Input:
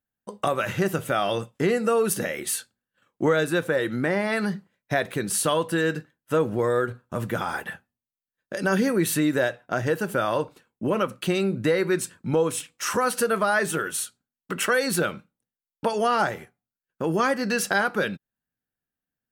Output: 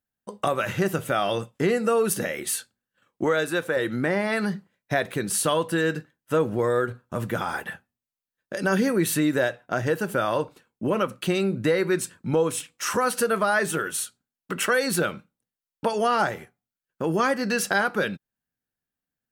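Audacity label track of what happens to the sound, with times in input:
3.240000	3.770000	bass shelf 230 Hz -9.5 dB

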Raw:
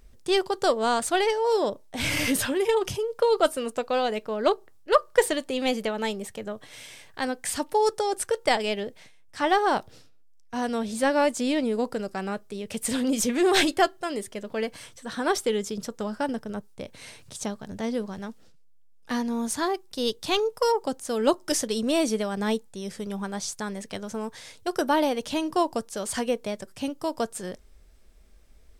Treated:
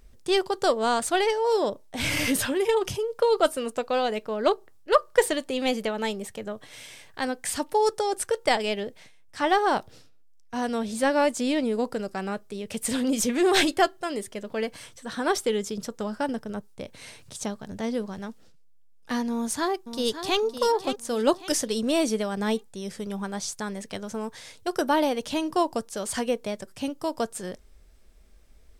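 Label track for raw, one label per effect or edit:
19.300000	20.390000	echo throw 560 ms, feedback 40%, level -10 dB

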